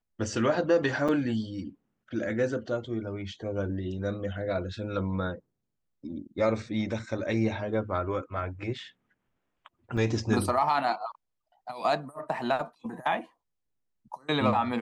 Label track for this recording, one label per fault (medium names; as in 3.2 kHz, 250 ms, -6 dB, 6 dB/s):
1.080000	1.090000	dropout 6 ms
9.970000	9.970000	dropout 5 ms